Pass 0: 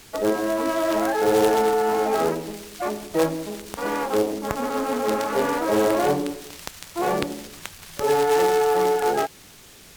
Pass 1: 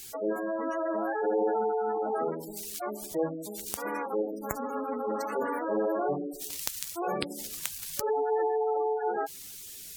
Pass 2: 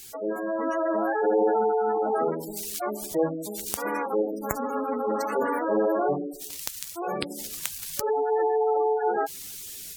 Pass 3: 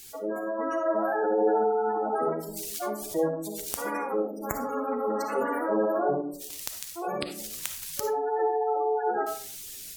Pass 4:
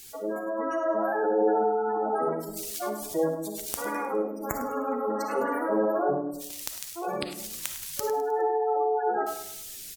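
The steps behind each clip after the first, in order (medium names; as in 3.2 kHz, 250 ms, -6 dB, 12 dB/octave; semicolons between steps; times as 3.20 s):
pre-emphasis filter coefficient 0.8; spectral gate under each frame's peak -15 dB strong; trim +5.5 dB
level rider gain up to 5 dB
algorithmic reverb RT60 0.43 s, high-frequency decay 0.65×, pre-delay 15 ms, DRR 6 dB; trim -2.5 dB
feedback delay 103 ms, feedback 41%, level -13.5 dB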